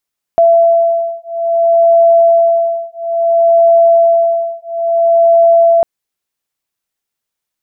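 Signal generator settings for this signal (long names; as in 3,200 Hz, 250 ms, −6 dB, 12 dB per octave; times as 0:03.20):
two tones that beat 672 Hz, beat 0.59 Hz, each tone −10 dBFS 5.45 s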